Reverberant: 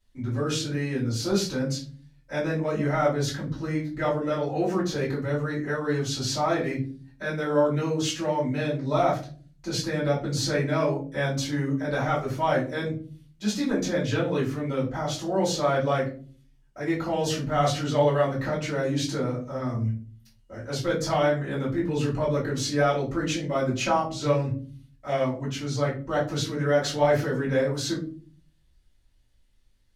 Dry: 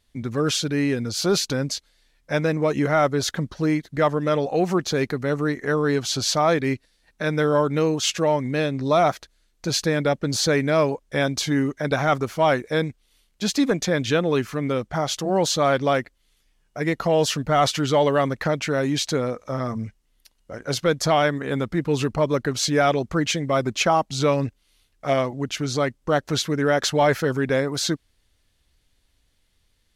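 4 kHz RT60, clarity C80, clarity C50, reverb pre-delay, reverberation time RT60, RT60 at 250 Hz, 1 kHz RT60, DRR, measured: 0.25 s, 14.0 dB, 8.5 dB, 3 ms, 0.45 s, 0.70 s, 0.35 s, -8.0 dB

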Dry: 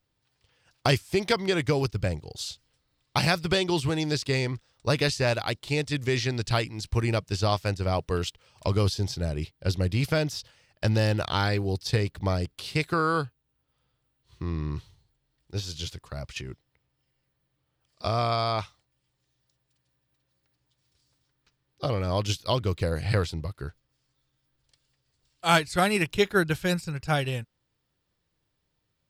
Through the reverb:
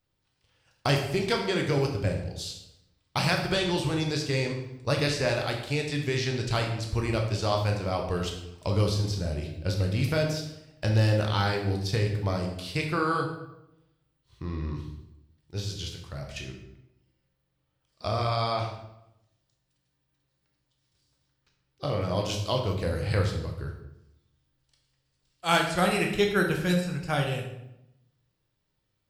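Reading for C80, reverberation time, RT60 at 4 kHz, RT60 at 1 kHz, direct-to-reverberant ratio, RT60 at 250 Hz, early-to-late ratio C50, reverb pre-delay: 8.0 dB, 0.85 s, 0.65 s, 0.80 s, 1.0 dB, 1.0 s, 5.5 dB, 13 ms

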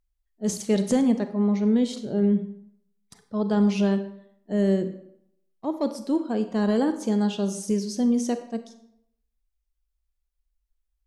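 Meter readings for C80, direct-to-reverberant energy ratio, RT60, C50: 13.5 dB, 9.0 dB, 0.75 s, 11.0 dB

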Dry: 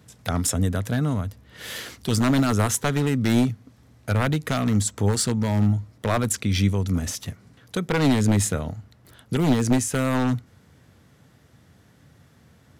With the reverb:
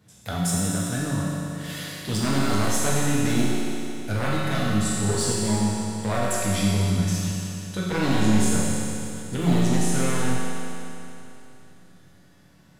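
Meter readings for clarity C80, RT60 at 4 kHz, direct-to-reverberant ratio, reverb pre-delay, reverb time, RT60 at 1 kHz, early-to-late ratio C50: -1.5 dB, 3.0 s, -7.0 dB, 5 ms, 3.0 s, 3.0 s, -3.5 dB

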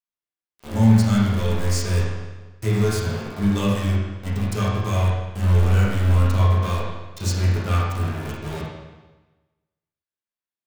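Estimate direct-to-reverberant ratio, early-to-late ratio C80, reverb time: -8.0 dB, 2.0 dB, 1.2 s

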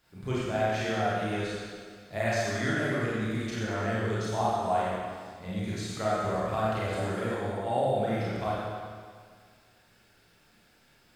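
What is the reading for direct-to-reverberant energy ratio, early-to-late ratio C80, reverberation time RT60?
-9.0 dB, -2.0 dB, 1.9 s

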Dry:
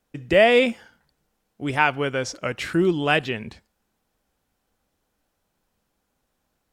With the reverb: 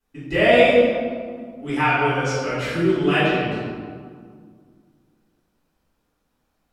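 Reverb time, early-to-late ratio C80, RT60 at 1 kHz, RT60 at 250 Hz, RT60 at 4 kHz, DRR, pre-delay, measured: 2.0 s, 0.5 dB, 2.0 s, 2.7 s, 1.1 s, -14.0 dB, 3 ms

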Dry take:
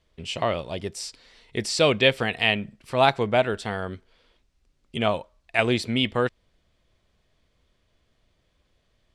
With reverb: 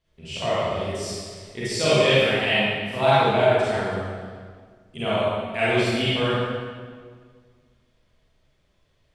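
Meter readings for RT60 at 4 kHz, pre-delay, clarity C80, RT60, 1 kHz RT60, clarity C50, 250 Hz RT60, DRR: 1.4 s, 32 ms, -2.5 dB, 1.8 s, 1.7 s, -6.5 dB, 2.1 s, -11.0 dB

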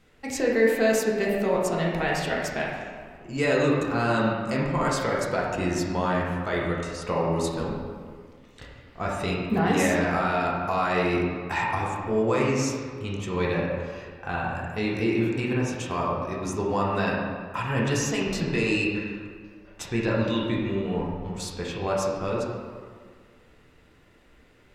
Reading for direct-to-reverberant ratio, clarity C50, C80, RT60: -4.5 dB, 0.0 dB, 2.5 dB, 1.8 s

